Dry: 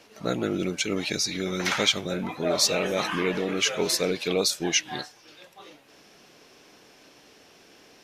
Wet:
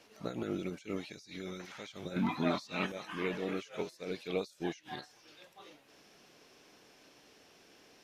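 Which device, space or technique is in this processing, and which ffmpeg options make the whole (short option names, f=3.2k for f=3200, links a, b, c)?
de-esser from a sidechain: -filter_complex "[0:a]asplit=2[a][b];[b]highpass=f=6.4k:w=0.5412,highpass=f=6.4k:w=1.3066,apad=whole_len=354367[c];[a][c]sidechaincompress=threshold=-57dB:ratio=6:attack=3:release=49,asettb=1/sr,asplit=3[d][e][f];[d]atrim=end=2.164[g];[e]atrim=start=2.16:end=2.92,asetpts=PTS-STARTPTS,afade=t=in:d=0.004:c=qsin,afade=t=out:st=0.756:d=0.004:c=qsin,equalizer=f=125:t=o:w=1:g=4,equalizer=f=250:t=o:w=1:g=10,equalizer=f=500:t=o:w=1:g=-9,equalizer=f=1k:t=o:w=1:g=9,equalizer=f=2k:t=o:w=1:g=3,equalizer=f=4k:t=o:w=1:g=6[h];[f]atrim=start=2.916[i];[g][h]acrossfade=d=0.004:c1=hsin:c2=qsin[j];[j][i]acrossfade=d=0.004:c1=qsin:c2=hsin,volume=-7dB"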